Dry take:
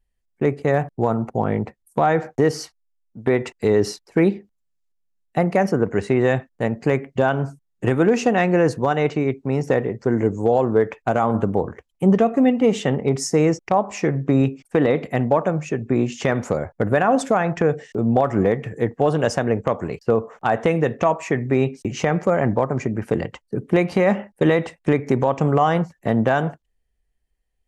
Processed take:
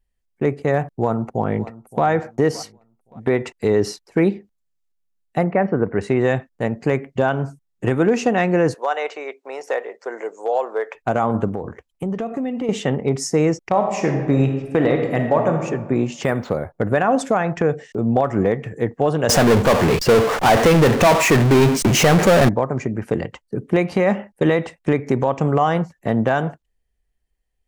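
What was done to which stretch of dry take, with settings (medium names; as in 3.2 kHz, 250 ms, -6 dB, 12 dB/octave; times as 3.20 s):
0.91–2.05 s: echo throw 570 ms, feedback 30%, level -18 dB
5.44–6.01 s: low-pass 2.4 kHz 24 dB/octave
8.74–10.95 s: high-pass 510 Hz 24 dB/octave
11.48–12.69 s: compression, threshold -21 dBFS
13.69–15.64 s: reverb throw, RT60 1.3 s, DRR 3.5 dB
16.23–16.73 s: decimation joined by straight lines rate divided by 4×
19.29–22.49 s: power-law waveshaper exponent 0.35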